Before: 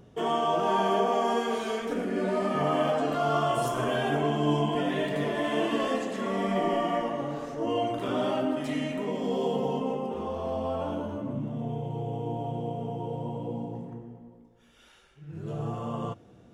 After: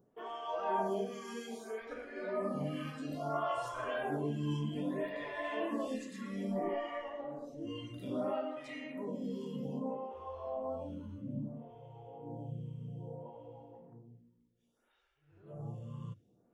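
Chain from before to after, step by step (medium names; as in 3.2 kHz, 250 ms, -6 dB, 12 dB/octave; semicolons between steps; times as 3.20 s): spectral noise reduction 9 dB; lamp-driven phase shifter 0.61 Hz; trim -5.5 dB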